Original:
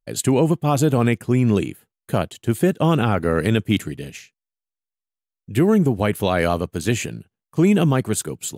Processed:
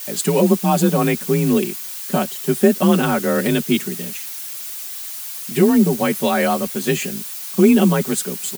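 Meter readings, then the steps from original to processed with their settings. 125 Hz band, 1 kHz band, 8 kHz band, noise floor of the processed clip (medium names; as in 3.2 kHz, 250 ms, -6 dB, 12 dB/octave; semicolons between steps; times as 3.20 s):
-2.5 dB, +2.5 dB, +5.0 dB, -31 dBFS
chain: added noise blue -32 dBFS; comb 5.6 ms, depth 89%; frequency shift +36 Hz; trim -1 dB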